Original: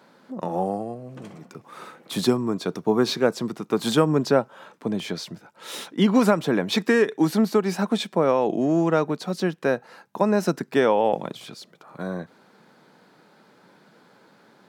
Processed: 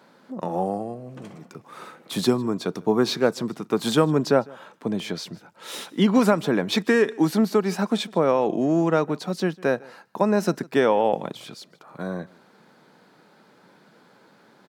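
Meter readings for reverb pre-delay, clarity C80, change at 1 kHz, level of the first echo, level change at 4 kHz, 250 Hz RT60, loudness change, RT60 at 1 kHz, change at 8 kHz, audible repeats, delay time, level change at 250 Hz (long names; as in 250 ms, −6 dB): no reverb audible, no reverb audible, 0.0 dB, −24.0 dB, 0.0 dB, no reverb audible, 0.0 dB, no reverb audible, 0.0 dB, 1, 153 ms, 0.0 dB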